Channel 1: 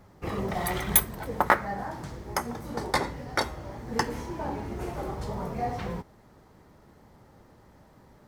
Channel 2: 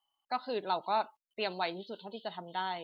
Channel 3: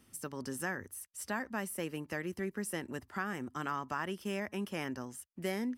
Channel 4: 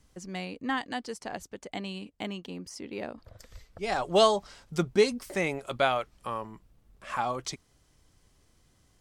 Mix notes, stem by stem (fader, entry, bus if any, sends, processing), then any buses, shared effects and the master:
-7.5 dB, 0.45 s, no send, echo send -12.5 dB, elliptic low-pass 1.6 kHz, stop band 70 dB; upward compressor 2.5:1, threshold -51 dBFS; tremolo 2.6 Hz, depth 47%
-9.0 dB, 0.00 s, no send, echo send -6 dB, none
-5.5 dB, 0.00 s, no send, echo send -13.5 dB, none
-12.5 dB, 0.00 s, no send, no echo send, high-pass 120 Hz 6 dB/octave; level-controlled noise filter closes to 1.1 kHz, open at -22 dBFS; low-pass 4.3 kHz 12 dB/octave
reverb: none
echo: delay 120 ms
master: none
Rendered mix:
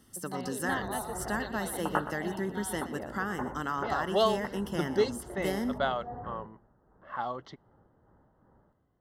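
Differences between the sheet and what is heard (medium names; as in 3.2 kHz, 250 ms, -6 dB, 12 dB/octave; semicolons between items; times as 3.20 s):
stem 3 -5.5 dB -> +3.5 dB; stem 4 -12.5 dB -> -4.0 dB; master: extra Butterworth band-stop 2.4 kHz, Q 3.7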